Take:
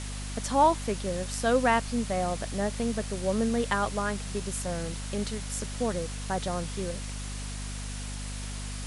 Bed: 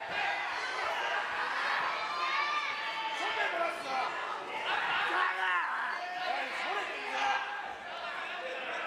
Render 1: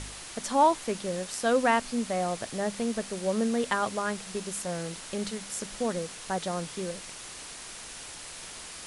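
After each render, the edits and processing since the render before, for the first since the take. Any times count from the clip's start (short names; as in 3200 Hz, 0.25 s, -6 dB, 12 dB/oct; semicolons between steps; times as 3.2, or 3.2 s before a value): de-hum 50 Hz, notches 5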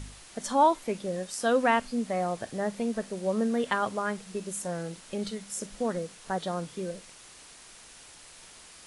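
noise print and reduce 8 dB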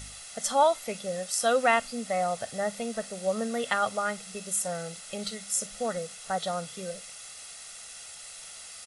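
tilt +2 dB/oct; comb 1.5 ms, depth 65%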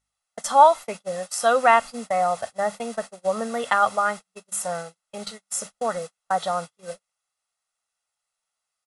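gate -35 dBFS, range -40 dB; bell 1000 Hz +11.5 dB 1.2 oct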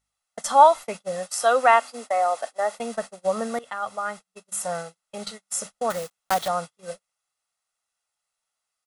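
1.43–2.79 Chebyshev high-pass 270 Hz, order 4; 3.59–4.75 fade in, from -18 dB; 5.9–6.49 block floating point 3-bit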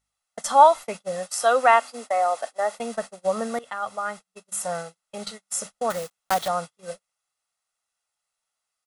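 nothing audible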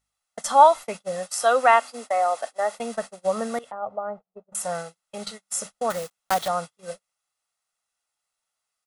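3.71–4.55 synth low-pass 650 Hz, resonance Q 1.6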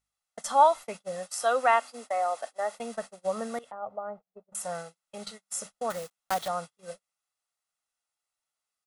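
gain -6 dB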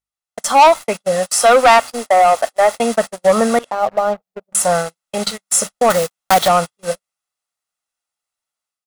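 AGC gain up to 9 dB; sample leveller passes 3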